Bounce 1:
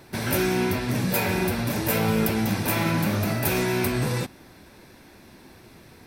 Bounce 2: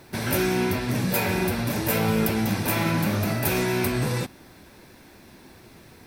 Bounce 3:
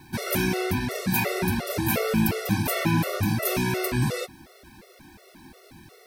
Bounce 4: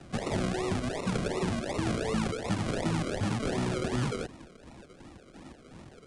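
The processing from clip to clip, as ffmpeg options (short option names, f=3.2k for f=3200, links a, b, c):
-af "acrusher=bits=9:mix=0:aa=0.000001"
-af "afftfilt=real='re*gt(sin(2*PI*2.8*pts/sr)*(1-2*mod(floor(b*sr/1024/370),2)),0)':imag='im*gt(sin(2*PI*2.8*pts/sr)*(1-2*mod(floor(b*sr/1024/370),2)),0)':win_size=1024:overlap=0.75,volume=2.5dB"
-filter_complex "[0:a]acrusher=samples=39:mix=1:aa=0.000001:lfo=1:lforange=23.4:lforate=2.7,acrossover=split=110|380[a][b][c];[a]acompressor=threshold=-39dB:ratio=4[d];[b]acompressor=threshold=-31dB:ratio=4[e];[c]acompressor=threshold=-33dB:ratio=4[f];[d][e][f]amix=inputs=3:normalize=0,aresample=22050,aresample=44100"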